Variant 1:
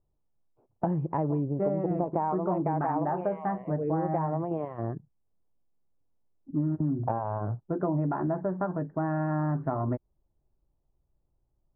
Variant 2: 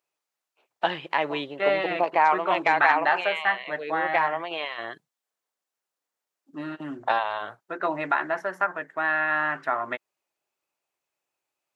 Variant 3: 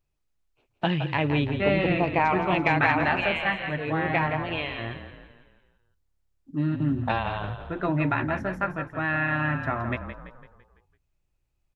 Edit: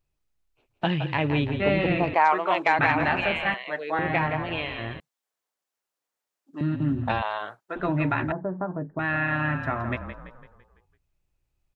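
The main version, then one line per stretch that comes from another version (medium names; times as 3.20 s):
3
2.14–2.79 s: from 2
3.54–3.99 s: from 2
5.00–6.61 s: from 2
7.22–7.76 s: from 2
8.32–8.99 s: from 1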